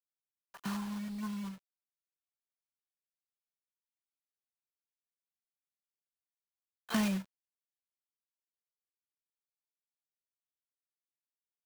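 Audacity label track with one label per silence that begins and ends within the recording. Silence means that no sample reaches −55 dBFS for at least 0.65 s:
1.580000	6.890000	silence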